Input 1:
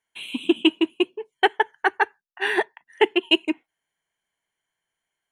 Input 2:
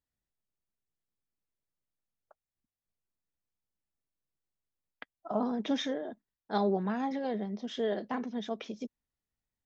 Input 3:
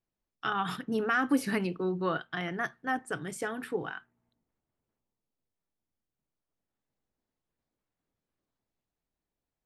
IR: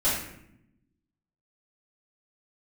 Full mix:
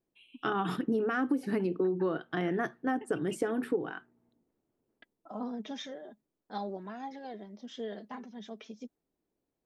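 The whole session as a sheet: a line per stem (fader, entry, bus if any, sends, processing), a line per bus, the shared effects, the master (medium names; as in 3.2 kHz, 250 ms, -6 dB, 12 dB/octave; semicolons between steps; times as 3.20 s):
-14.5 dB, 0.00 s, no send, compression, threshold -21 dBFS, peak gain reduction 9.5 dB; spectral contrast expander 1.5:1; auto duck -9 dB, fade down 0.30 s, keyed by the third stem
-4.5 dB, 0.00 s, no send, gate with hold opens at -46 dBFS; treble shelf 5.4 kHz +7 dB; flange 0.42 Hz, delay 2.3 ms, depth 3.1 ms, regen +34%
-3.5 dB, 0.00 s, no send, peaking EQ 340 Hz +15 dB 2.1 oct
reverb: none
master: compression 12:1, threshold -26 dBFS, peak gain reduction 15.5 dB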